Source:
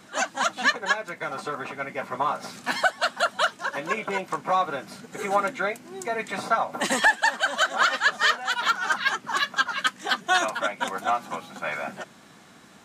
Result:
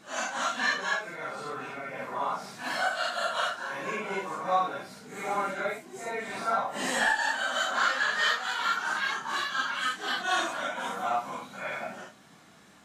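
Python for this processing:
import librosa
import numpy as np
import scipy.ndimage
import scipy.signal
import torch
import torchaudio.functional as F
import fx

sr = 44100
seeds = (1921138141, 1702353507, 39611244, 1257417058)

y = fx.phase_scramble(x, sr, seeds[0], window_ms=200)
y = y * 10.0 ** (-4.5 / 20.0)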